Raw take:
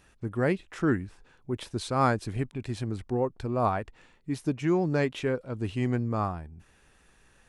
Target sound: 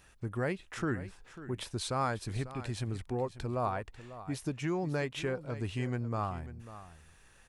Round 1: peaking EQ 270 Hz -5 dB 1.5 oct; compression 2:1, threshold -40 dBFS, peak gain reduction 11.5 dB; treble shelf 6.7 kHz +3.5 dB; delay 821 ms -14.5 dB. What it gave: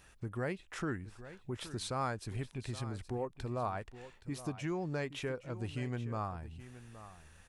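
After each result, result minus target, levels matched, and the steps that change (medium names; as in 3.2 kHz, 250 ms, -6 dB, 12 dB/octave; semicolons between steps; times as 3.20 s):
echo 277 ms late; compression: peak gain reduction +4 dB
change: delay 544 ms -14.5 dB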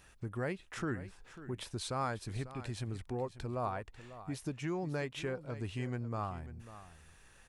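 compression: peak gain reduction +4 dB
change: compression 2:1, threshold -32.5 dBFS, peak gain reduction 7.5 dB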